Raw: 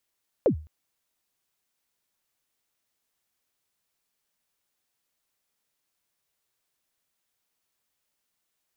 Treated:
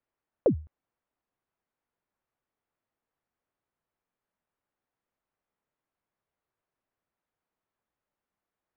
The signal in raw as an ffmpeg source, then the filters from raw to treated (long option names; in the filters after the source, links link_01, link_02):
-f lavfi -i "aevalsrc='0.211*pow(10,-3*t/0.36)*sin(2*PI*(600*0.094/log(77/600)*(exp(log(77/600)*min(t,0.094)/0.094)-1)+77*max(t-0.094,0)))':duration=0.21:sample_rate=44100"
-af "lowpass=1400"